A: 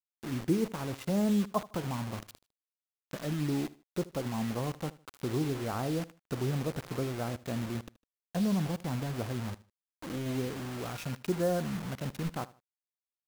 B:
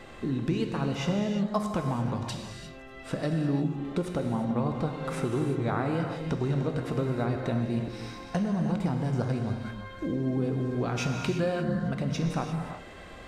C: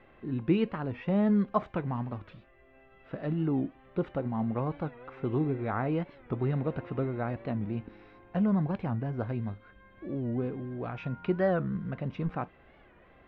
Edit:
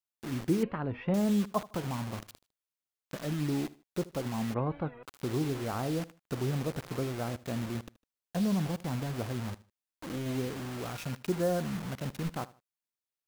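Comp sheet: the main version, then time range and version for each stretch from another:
A
0.63–1.14 from C
4.54–5.03 from C
not used: B

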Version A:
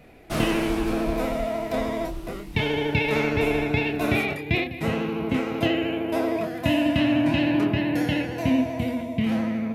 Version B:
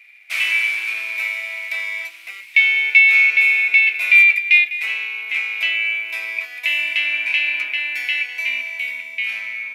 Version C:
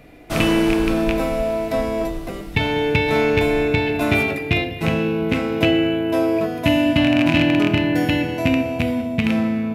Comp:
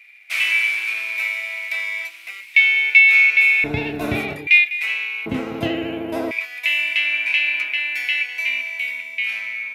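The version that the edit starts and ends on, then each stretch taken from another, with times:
B
3.64–4.47 from A
5.26–6.31 from A
not used: C

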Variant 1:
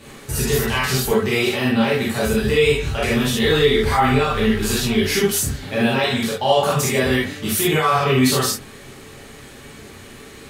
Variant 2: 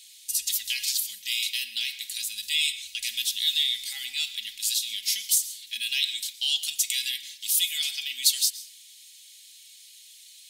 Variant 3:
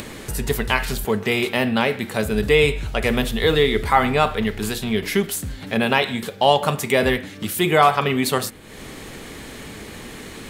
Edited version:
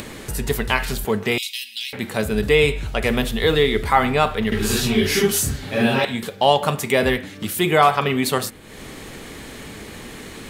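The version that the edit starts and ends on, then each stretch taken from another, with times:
3
1.38–1.93 from 2
4.52–6.05 from 1

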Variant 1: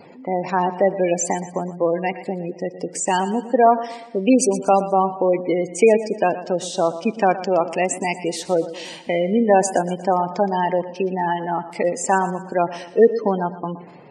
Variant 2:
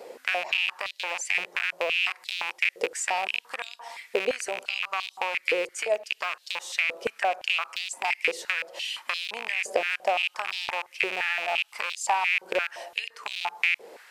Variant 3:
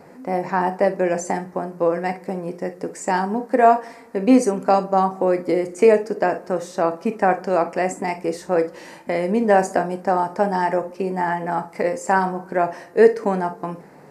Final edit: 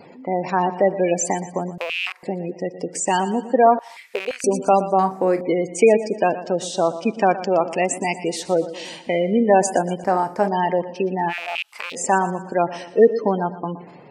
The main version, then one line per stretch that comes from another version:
1
1.78–2.23 from 2
3.79–4.44 from 2
4.99–5.41 from 3
10.04–10.48 from 3
11.31–11.94 from 2, crossfade 0.06 s

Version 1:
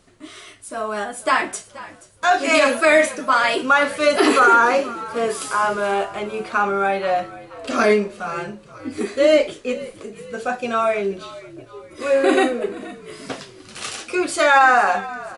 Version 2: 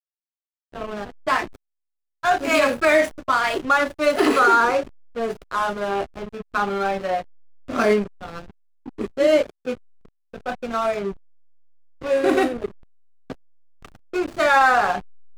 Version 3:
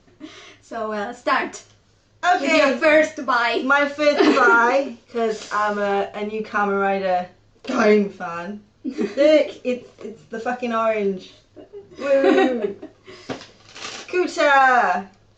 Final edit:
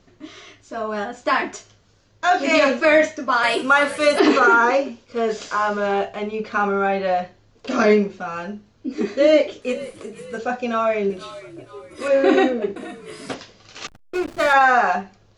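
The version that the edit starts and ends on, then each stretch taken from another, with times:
3
3.43–4.19 from 1
9.62–10.38 from 1
11.1–12.08 from 1
12.76–13.34 from 1
13.87–14.53 from 2

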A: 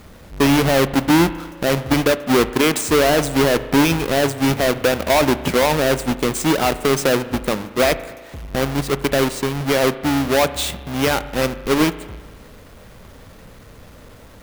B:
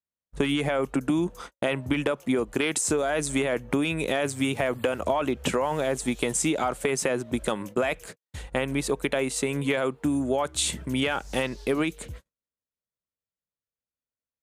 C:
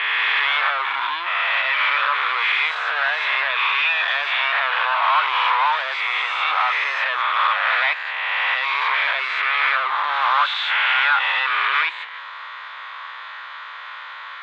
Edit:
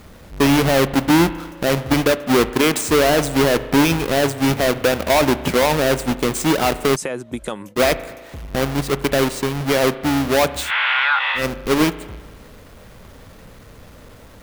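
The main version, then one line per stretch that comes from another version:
A
6.96–7.76 from B
10.65–11.41 from C, crossfade 0.16 s

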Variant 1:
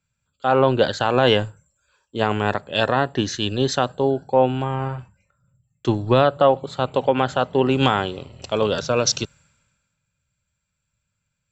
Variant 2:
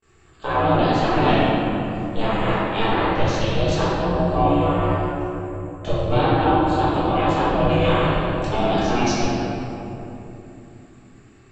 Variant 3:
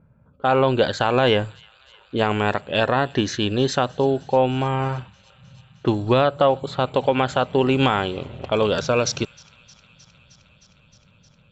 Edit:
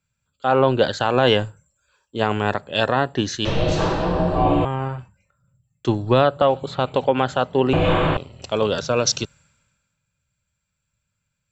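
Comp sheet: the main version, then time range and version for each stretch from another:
1
3.45–4.65 from 2
6.42–7.04 from 3
7.73–8.17 from 2

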